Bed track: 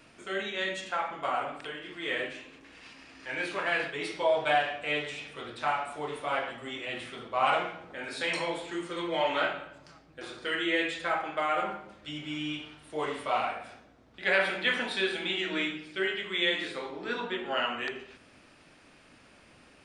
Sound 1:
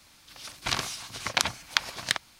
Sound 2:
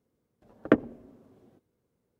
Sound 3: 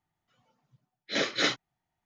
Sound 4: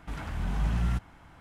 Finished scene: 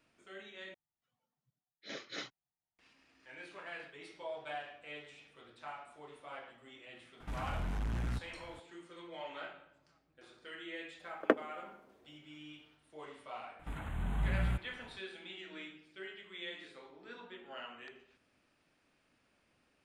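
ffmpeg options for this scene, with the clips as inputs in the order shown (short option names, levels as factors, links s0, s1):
-filter_complex "[4:a]asplit=2[s0][s1];[0:a]volume=0.141[s2];[s0]asoftclip=type=tanh:threshold=0.0335[s3];[2:a]highpass=450[s4];[s1]asuperstop=centerf=5200:order=4:qfactor=1.5[s5];[s2]asplit=2[s6][s7];[s6]atrim=end=0.744[s8];[3:a]atrim=end=2.05,asetpts=PTS-STARTPTS,volume=0.141[s9];[s7]atrim=start=2.786[s10];[s3]atrim=end=1.4,asetpts=PTS-STARTPTS,volume=0.75,afade=t=in:d=0.004:c=hsin,afade=t=out:st=1.396:d=0.004:c=hsin,adelay=7200[s11];[s4]atrim=end=2.19,asetpts=PTS-STARTPTS,volume=0.75,afade=t=in:d=0.004:c=hsin,afade=t=out:st=2.186:d=0.004:c=hsin,adelay=466578S[s12];[s5]atrim=end=1.4,asetpts=PTS-STARTPTS,volume=0.531,afade=t=in:d=0.004:c=hsin,afade=t=out:st=1.396:d=0.004:c=hsin,adelay=13590[s13];[s8][s9]acrossfade=d=0.004:c1=hsin:c2=hsin[s14];[s14][s10]acrossfade=d=0.004:c1=hsin:c2=hsin[s15];[s15][s11][s12][s13]amix=inputs=4:normalize=0"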